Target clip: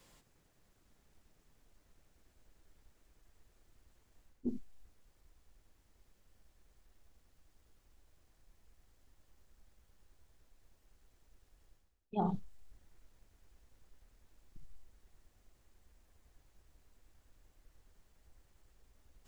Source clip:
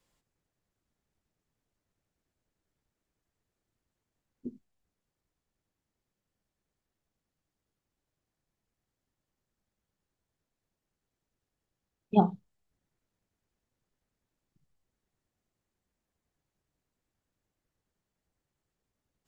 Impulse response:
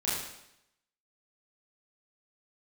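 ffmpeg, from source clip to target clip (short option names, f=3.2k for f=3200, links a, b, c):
-af "asubboost=boost=7:cutoff=53,areverse,acompressor=threshold=-46dB:ratio=6,areverse,volume=12.5dB"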